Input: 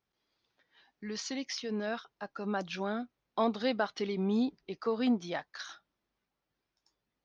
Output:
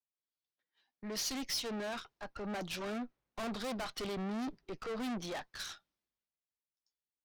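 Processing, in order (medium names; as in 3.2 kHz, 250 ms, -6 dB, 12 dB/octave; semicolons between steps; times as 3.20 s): valve stage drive 44 dB, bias 0.75; three bands expanded up and down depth 70%; trim +7 dB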